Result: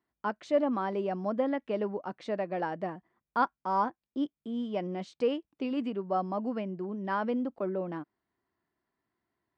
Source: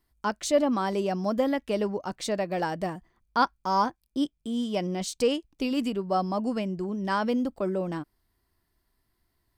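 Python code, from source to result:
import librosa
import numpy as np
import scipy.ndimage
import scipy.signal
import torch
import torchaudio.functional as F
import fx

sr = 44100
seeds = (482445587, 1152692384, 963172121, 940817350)

y = fx.bandpass_edges(x, sr, low_hz=180.0, high_hz=2200.0)
y = F.gain(torch.from_numpy(y), -3.5).numpy()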